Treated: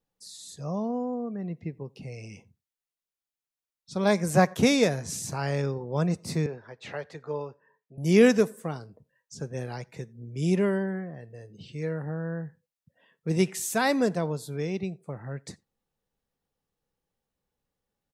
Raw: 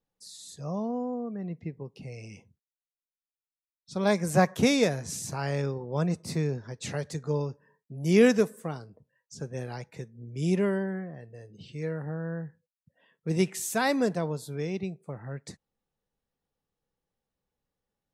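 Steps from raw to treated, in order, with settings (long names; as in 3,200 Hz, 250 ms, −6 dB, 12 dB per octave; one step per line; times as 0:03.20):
0:06.46–0:07.98: three-way crossover with the lows and the highs turned down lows −13 dB, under 420 Hz, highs −22 dB, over 3,500 Hz
slap from a distant wall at 15 metres, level −29 dB
level +1.5 dB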